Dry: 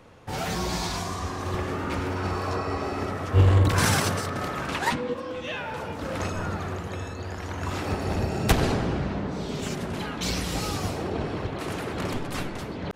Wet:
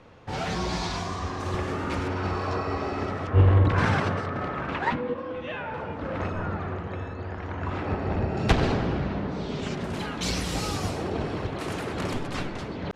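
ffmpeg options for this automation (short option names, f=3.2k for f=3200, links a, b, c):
-af "asetnsamples=n=441:p=0,asendcmd='1.4 lowpass f 9000;2.08 lowpass f 5100;3.27 lowpass f 2300;8.37 lowpass f 4500;9.84 lowpass f 11000;12.28 lowpass f 6200',lowpass=5.3k"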